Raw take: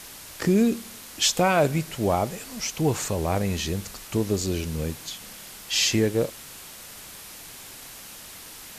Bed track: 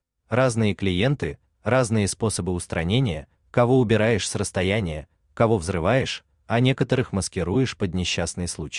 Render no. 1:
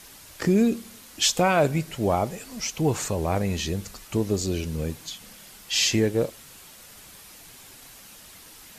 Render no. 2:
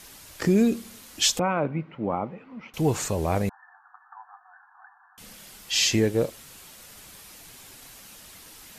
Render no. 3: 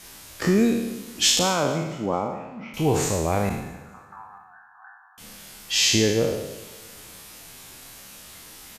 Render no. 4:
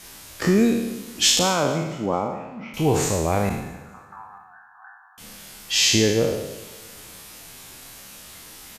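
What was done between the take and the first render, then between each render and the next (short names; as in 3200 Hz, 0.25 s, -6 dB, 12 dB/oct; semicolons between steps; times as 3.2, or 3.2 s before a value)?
denoiser 6 dB, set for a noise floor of -43 dBFS
1.39–2.74 speaker cabinet 180–2000 Hz, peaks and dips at 400 Hz -7 dB, 660 Hz -9 dB, 1700 Hz -10 dB; 3.49–5.18 brick-wall FIR band-pass 710–1800 Hz
spectral trails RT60 0.99 s; feedback echo 0.222 s, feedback 53%, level -22.5 dB
gain +1.5 dB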